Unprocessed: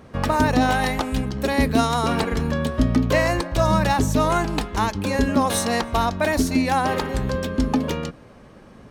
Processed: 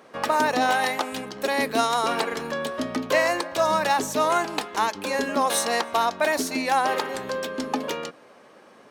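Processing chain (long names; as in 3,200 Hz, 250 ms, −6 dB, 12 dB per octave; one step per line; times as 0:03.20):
high-pass filter 420 Hz 12 dB per octave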